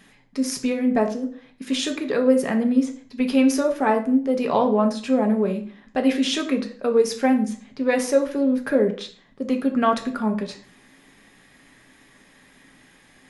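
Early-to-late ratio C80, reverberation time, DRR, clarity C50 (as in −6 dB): 15.5 dB, 0.45 s, 4.0 dB, 11.5 dB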